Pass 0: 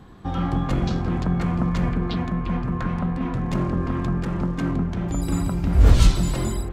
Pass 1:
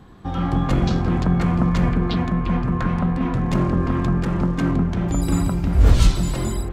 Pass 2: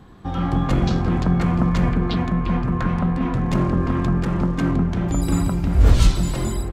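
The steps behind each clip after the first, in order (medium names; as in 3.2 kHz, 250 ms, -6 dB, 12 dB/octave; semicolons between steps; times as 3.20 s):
level rider gain up to 4 dB
delay 372 ms -24 dB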